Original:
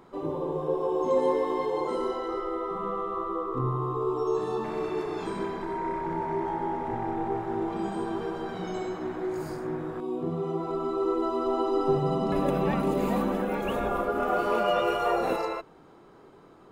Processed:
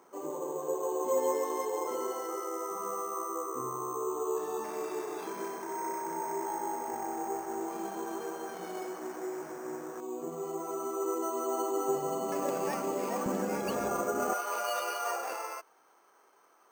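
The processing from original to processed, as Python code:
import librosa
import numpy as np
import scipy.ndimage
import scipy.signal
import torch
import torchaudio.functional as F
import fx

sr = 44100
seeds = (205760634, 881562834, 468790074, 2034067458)

y = fx.highpass(x, sr, hz=fx.steps((0.0, 370.0), (13.26, 120.0), (14.33, 850.0)), slope=12)
y = np.repeat(scipy.signal.resample_poly(y, 1, 6), 6)[:len(y)]
y = F.gain(torch.from_numpy(y), -3.5).numpy()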